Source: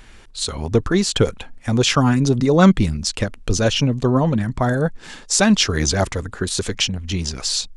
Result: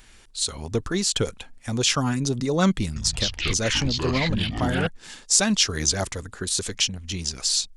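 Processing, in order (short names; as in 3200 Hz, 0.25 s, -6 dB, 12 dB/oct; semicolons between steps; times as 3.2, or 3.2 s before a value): high shelf 3500 Hz +11 dB; 2.87–4.87 echoes that change speed 90 ms, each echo -6 st, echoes 3; gain -8.5 dB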